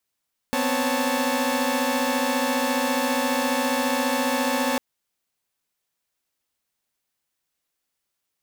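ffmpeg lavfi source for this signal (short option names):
-f lavfi -i "aevalsrc='0.0596*((2*mod(246.94*t,1)-1)+(2*mod(261.63*t,1)-1)+(2*mod(554.37*t,1)-1)+(2*mod(880*t,1)-1))':d=4.25:s=44100"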